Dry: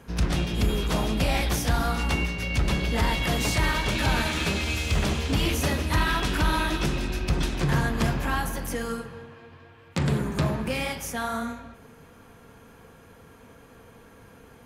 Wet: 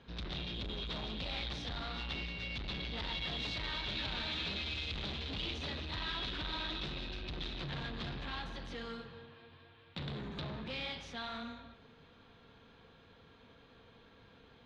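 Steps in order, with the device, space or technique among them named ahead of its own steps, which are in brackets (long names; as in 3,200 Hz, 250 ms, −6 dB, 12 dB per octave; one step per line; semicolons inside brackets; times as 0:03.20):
overdriven synthesiser ladder filter (soft clipping −28.5 dBFS, distortion −8 dB; transistor ladder low-pass 4,100 Hz, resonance 70%)
level +1 dB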